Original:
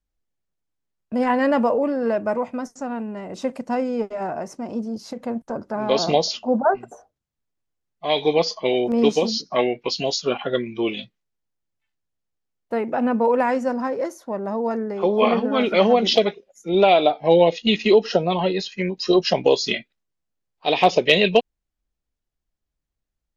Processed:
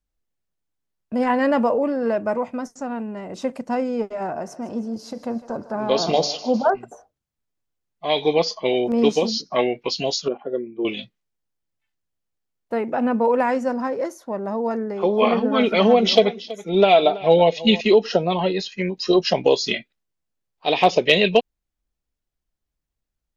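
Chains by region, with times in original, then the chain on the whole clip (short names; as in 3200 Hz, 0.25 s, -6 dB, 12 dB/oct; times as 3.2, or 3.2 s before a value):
4.32–6.7 bell 2200 Hz -3.5 dB 0.37 oct + de-hum 145.8 Hz, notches 40 + thinning echo 0.154 s, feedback 59%, high-pass 500 Hz, level -15 dB
10.28–10.85 band-pass 390 Hz, Q 1.7 + air absorption 190 m
15.4–17.81 comb 4.5 ms, depth 42% + echo 0.327 s -17.5 dB
whole clip: dry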